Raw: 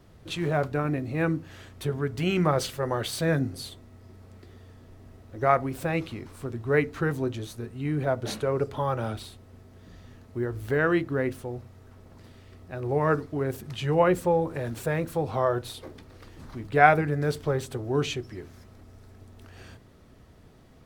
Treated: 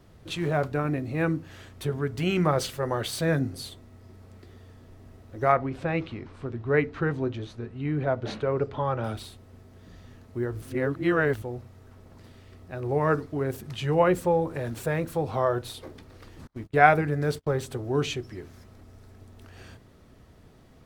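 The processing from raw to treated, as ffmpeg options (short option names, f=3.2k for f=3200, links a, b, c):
-filter_complex "[0:a]asettb=1/sr,asplit=3[a][b][c];[a]atrim=end=5.524[d];[b]atrim=start=5.52:end=9.04,asetpts=PTS-STARTPTS,afade=t=in:d=0.004:c=qsin,afade=t=out:st=3.516:d=0.004:c=qsin,lowpass=3.7k[e];[c]atrim=start=9.036[f];[d][e]acrossfade=d=0.004:c1=hsin:c2=qsin[g];[g][f]acrossfade=d=0.004:c1=qsin:c2=hsin,asettb=1/sr,asplit=3[h][i][j];[h]atrim=end=16.474[k];[i]atrim=start=16.47:end=17.61,asetpts=PTS-STARTPTS,afade=t=in:d=0.004:c=qsin,afade=t=out:st=1.136:d=0.004:c=qsin,agate=range=-36dB:threshold=-39dB:ratio=16:release=100:detection=peak[l];[j]atrim=start=17.606[m];[k][l]acrossfade=d=0.004:c1=hsin:c2=qsin[n];[n][m]acrossfade=d=0.004:c1=qsin:c2=hsin,asplit=3[o][p][q];[o]atrim=end=10.622[r];[p]atrim=start=10.618:end=11.422,asetpts=PTS-STARTPTS,areverse[s];[q]atrim=start=11.418[t];[r][s]acrossfade=d=0.004:c1=hsin:c2=hsin[u];[u][t]acrossfade=d=0.004:c1=hsin:c2=hsin"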